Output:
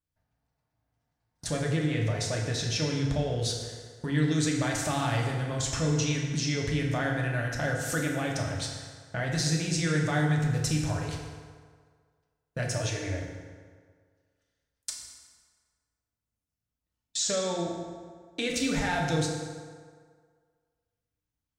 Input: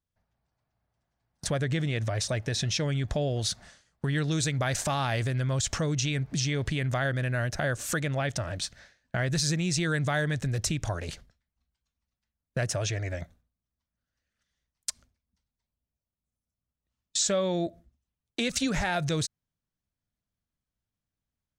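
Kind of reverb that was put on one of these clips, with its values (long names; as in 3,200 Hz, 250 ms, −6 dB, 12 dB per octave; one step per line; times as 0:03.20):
feedback delay network reverb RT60 1.8 s, low-frequency decay 0.85×, high-frequency decay 0.65×, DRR −1.5 dB
level −4 dB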